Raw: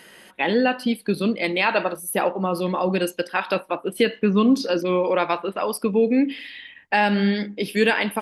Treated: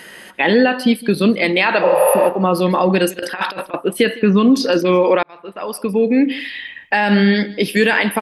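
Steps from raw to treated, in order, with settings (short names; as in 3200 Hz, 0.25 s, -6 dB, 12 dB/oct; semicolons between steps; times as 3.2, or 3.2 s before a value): 1.84–2.22 spectral repair 420–9200 Hz after; limiter -12.5 dBFS, peak gain reduction 7 dB; 3.19–3.74 negative-ratio compressor -31 dBFS, ratio -0.5; bell 1800 Hz +4.5 dB 0.28 oct; echo 0.158 s -19.5 dB; 5.23–6.39 fade in; gain +8 dB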